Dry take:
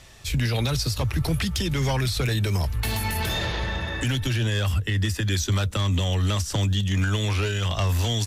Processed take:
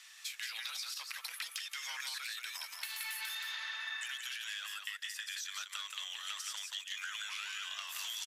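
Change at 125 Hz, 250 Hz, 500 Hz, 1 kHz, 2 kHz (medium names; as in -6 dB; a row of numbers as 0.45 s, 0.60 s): under -40 dB, under -40 dB, under -35 dB, -16.0 dB, -9.0 dB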